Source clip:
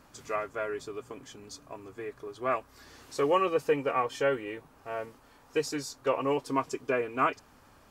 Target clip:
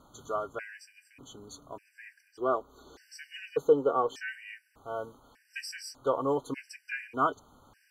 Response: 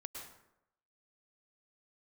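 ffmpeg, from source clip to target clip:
-filter_complex "[0:a]asettb=1/sr,asplit=3[link_01][link_02][link_03];[link_01]atrim=end=2.284[link_04];[link_02]atrim=start=2.28:end=4.28,asetpts=PTS-STARTPTS,afade=type=in:duration=0.004:curve=qsin,afade=type=out:start_time=1.996:duration=0.004:curve=qsin,equalizer=frequency=100:width_type=o:width=0.67:gain=-8,equalizer=frequency=400:width_type=o:width=0.67:gain=7,equalizer=frequency=2500:width_type=o:width=0.67:gain=-5,equalizer=frequency=10000:width_type=o:width=0.67:gain=-7[link_05];[link_03]atrim=start=4.276[link_06];[link_04][link_05]acrossfade=duration=0.004:curve1=hsin:curve2=qsin[link_07];[link_07][link_06]acrossfade=duration=0.004:curve1=qsin:curve2=hsin,afftfilt=real='re*gt(sin(2*PI*0.84*pts/sr)*(1-2*mod(floor(b*sr/1024/1500),2)),0)':imag='im*gt(sin(2*PI*0.84*pts/sr)*(1-2*mod(floor(b*sr/1024/1500),2)),0)':win_size=1024:overlap=0.75"

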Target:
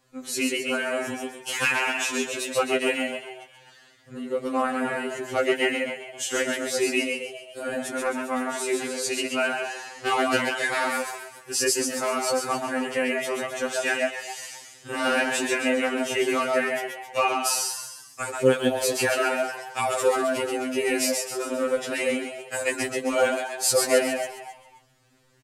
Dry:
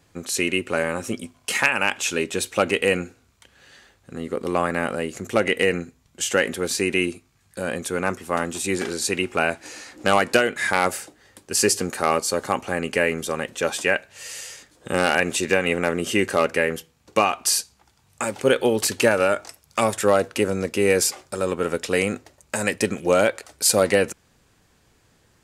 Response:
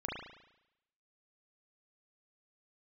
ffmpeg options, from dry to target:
-filter_complex "[0:a]flanger=delay=1.2:depth=5.6:regen=52:speed=1.7:shape=triangular,asplit=7[link_01][link_02][link_03][link_04][link_05][link_06][link_07];[link_02]adelay=132,afreqshift=66,volume=-4dB[link_08];[link_03]adelay=264,afreqshift=132,volume=-10.4dB[link_09];[link_04]adelay=396,afreqshift=198,volume=-16.8dB[link_10];[link_05]adelay=528,afreqshift=264,volume=-23.1dB[link_11];[link_06]adelay=660,afreqshift=330,volume=-29.5dB[link_12];[link_07]adelay=792,afreqshift=396,volume=-35.9dB[link_13];[link_01][link_08][link_09][link_10][link_11][link_12][link_13]amix=inputs=7:normalize=0,afftfilt=real='re*2.45*eq(mod(b,6),0)':imag='im*2.45*eq(mod(b,6),0)':win_size=2048:overlap=0.75,volume=2dB"

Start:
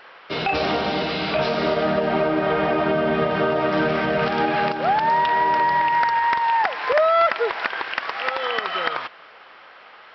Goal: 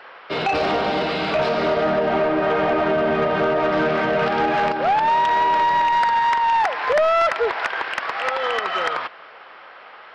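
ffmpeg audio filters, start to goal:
ffmpeg -i in.wav -filter_complex "[0:a]highshelf=frequency=3200:gain=-9,acrossover=split=350[link_01][link_02];[link_02]acontrast=22[link_03];[link_01][link_03]amix=inputs=2:normalize=0,asoftclip=type=tanh:threshold=-13dB" out.wav

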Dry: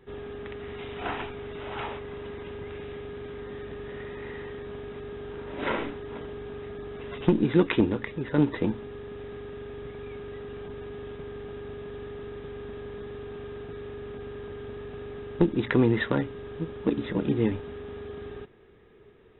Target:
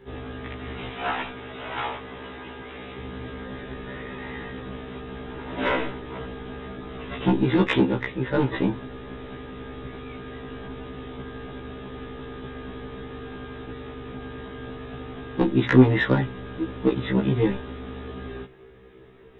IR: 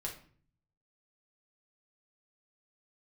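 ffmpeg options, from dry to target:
-filter_complex "[0:a]asettb=1/sr,asplit=3[link_01][link_02][link_03];[link_01]atrim=end=0.894[link_04];[link_02]atrim=start=0.89:end=2.98,asetpts=PTS-STARTPTS,afade=type=in:duration=0.004:curve=qsin,afade=type=out:start_time=2.086:duration=0.004:curve=qsin,lowshelf=frequency=200:gain=-10.5[link_05];[link_03]atrim=start=2.976[link_06];[link_04][link_05]acrossfade=duration=0.004:curve1=hsin:curve2=qsin[link_07];[link_07][link_06]acrossfade=duration=0.004:curve1=qsin:curve2=hsin,asoftclip=type=tanh:threshold=-12.5dB,afftfilt=real='re*1.73*eq(mod(b,3),0)':imag='im*1.73*eq(mod(b,3),0)':win_size=2048:overlap=0.75,volume=8.5dB"

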